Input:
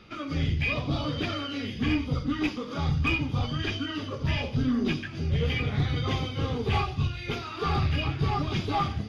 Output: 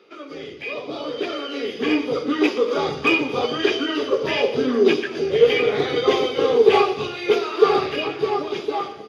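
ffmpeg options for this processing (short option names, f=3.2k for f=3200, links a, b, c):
-filter_complex "[0:a]dynaudnorm=f=650:g=5:m=12dB,highpass=f=420:t=q:w=4.9,asplit=2[a][b];[b]aecho=0:1:117|234|351|468|585:0.15|0.0823|0.0453|0.0249|0.0137[c];[a][c]amix=inputs=2:normalize=0,volume=-3.5dB"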